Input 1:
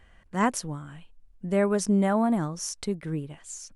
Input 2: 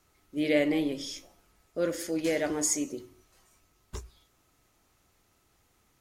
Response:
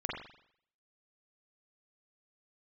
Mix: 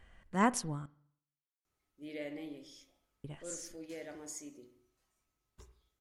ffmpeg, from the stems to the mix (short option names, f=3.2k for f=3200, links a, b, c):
-filter_complex "[0:a]volume=-5dB,asplit=3[a][b][c];[a]atrim=end=0.86,asetpts=PTS-STARTPTS,afade=t=out:st=0.856:d=0.004:c=hsin[d];[b]atrim=start=0.86:end=3.24,asetpts=PTS-STARTPTS,volume=0[e];[c]atrim=start=3.24,asetpts=PTS-STARTPTS,afade=t=in:d=0.004:c=hsin[f];[d][e][f]concat=n=3:v=0:a=1,asplit=2[g][h];[h]volume=-21.5dB[i];[1:a]adelay=1650,volume=-19.5dB,asplit=2[j][k];[k]volume=-10.5dB[l];[2:a]atrim=start_sample=2205[m];[i][l]amix=inputs=2:normalize=0[n];[n][m]afir=irnorm=-1:irlink=0[o];[g][j][o]amix=inputs=3:normalize=0"